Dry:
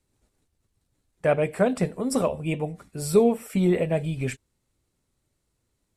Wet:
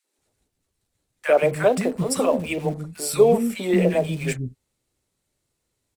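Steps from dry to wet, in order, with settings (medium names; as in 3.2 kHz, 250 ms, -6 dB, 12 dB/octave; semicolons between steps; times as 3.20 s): bass shelf 160 Hz -9 dB; in parallel at -5 dB: small samples zeroed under -36 dBFS; on the sum: three bands offset in time highs, mids, lows 40/180 ms, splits 270/1200 Hz; trim +2.5 dB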